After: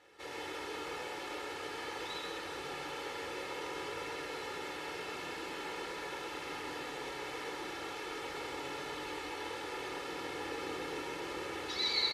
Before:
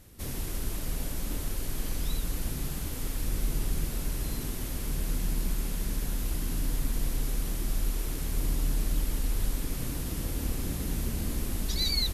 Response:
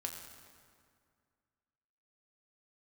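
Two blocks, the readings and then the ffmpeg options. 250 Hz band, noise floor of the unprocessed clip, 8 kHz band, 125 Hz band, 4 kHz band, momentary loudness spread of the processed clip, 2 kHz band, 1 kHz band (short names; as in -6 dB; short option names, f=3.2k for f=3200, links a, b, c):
-8.5 dB, -35 dBFS, -13.0 dB, -23.5 dB, -2.0 dB, 2 LU, +5.0 dB, +7.0 dB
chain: -filter_complex "[0:a]highpass=560,lowpass=2.8k,aecho=1:1:2.3:0.73,aecho=1:1:131:0.562[a];[1:a]atrim=start_sample=2205,asetrate=32193,aresample=44100[b];[a][b]afir=irnorm=-1:irlink=0,volume=2.5dB"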